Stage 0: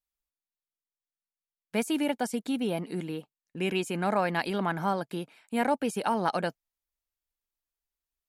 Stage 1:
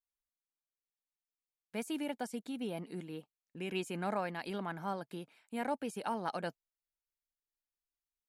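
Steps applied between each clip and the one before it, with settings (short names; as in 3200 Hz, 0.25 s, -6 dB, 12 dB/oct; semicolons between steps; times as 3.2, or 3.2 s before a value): noise-modulated level, depth 50%; gain -7 dB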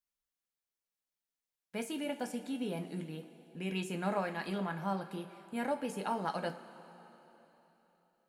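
two-slope reverb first 0.25 s, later 3.7 s, from -18 dB, DRR 4.5 dB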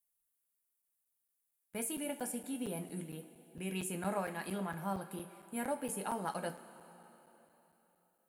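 resonant high shelf 7400 Hz +12 dB, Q 1.5; crackling interface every 0.23 s, samples 256, zero, from 0.82; gain -2.5 dB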